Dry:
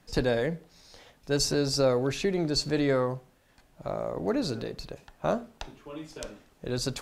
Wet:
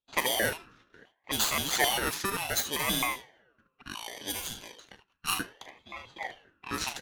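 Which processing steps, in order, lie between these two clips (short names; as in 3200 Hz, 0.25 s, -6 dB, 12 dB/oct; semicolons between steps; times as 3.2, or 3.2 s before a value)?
FFT order left unsorted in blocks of 32 samples; early reflections 40 ms -11 dB, 76 ms -9.5 dB; low-pass opened by the level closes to 1500 Hz, open at -23 dBFS; 3.83–5.28 passive tone stack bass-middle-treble 10-0-10; gate -58 dBFS, range -19 dB; harmonic-percussive split harmonic -5 dB; in parallel at -7 dB: hard clip -27.5 dBFS, distortion -11 dB; on the sum: LFO high-pass square 3.8 Hz 610–1700 Hz; on a send at -20 dB: high shelf 3100 Hz -11.5 dB + reverb RT60 1.2 s, pre-delay 3 ms; on the sum: ring modulator with a swept carrier 1200 Hz, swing 35%, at 0.67 Hz; gain +2.5 dB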